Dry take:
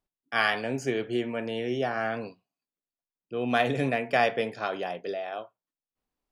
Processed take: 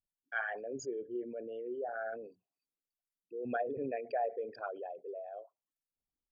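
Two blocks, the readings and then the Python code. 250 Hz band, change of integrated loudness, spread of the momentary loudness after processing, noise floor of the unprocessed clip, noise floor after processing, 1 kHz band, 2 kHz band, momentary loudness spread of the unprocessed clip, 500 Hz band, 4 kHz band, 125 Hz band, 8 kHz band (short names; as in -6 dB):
-12.5 dB, -10.5 dB, 10 LU, under -85 dBFS, under -85 dBFS, -10.5 dB, -12.0 dB, 10 LU, -8.5 dB, under -25 dB, -21.5 dB, n/a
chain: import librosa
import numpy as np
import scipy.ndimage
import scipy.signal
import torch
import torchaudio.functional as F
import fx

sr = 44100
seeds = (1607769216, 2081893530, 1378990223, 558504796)

y = fx.envelope_sharpen(x, sr, power=3.0)
y = F.preemphasis(torch.from_numpy(y), 0.8).numpy()
y = fx.env_lowpass_down(y, sr, base_hz=1200.0, full_db=-33.0)
y = y * librosa.db_to_amplitude(3.5)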